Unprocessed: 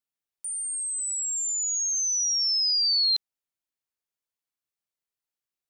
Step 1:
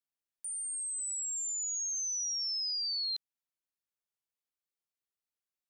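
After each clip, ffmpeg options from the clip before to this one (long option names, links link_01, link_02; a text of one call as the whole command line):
ffmpeg -i in.wav -af "acompressor=threshold=-27dB:ratio=6,volume=-6dB" out.wav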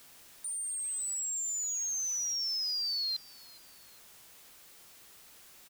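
ffmpeg -i in.wav -af "aeval=exprs='val(0)+0.5*0.00473*sgn(val(0))':channel_layout=same,aecho=1:1:411|822:0.0708|0.0255,acrusher=bits=5:mode=log:mix=0:aa=0.000001" out.wav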